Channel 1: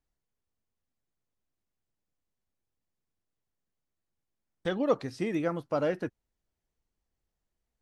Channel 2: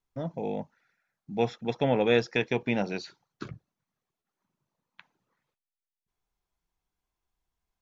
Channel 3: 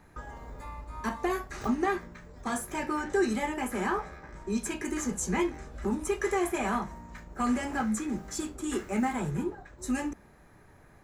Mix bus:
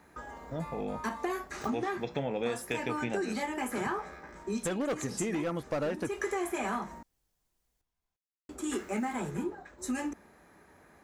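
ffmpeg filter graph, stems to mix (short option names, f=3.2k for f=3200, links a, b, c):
-filter_complex "[0:a]acrossover=split=2600[a][b];[b]acompressor=threshold=-52dB:ratio=4:attack=1:release=60[c];[a][c]amix=inputs=2:normalize=0,highshelf=f=4.5k:g=10,volume=26dB,asoftclip=hard,volume=-26dB,volume=2.5dB,asplit=2[d][e];[1:a]flanger=delay=5.9:depth=8.7:regen=73:speed=0.31:shape=sinusoidal,adelay=350,volume=1.5dB[f];[2:a]highpass=90,equalizer=f=120:t=o:w=0.56:g=-15,volume=0.5dB,asplit=3[g][h][i];[g]atrim=end=7.03,asetpts=PTS-STARTPTS,afade=t=out:st=7.026:d=0.004:c=hsin[j];[h]atrim=start=7.03:end=8.49,asetpts=PTS-STARTPTS,volume=0[k];[i]atrim=start=8.49,asetpts=PTS-STARTPTS,afade=t=in:d=0.004:c=hsin[l];[j][k][l]concat=n=3:v=0:a=1[m];[e]apad=whole_len=486793[n];[m][n]sidechaincompress=threshold=-35dB:ratio=8:attack=8.8:release=205[o];[d][f][o]amix=inputs=3:normalize=0,acompressor=threshold=-29dB:ratio=6"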